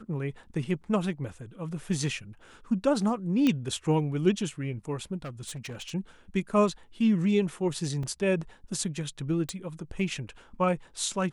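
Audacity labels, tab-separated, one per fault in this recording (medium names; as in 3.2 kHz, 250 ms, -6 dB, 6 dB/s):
3.470000	3.470000	pop -13 dBFS
5.240000	5.920000	clipped -34 dBFS
8.030000	8.030000	dropout 3.3 ms
9.490000	9.490000	pop -17 dBFS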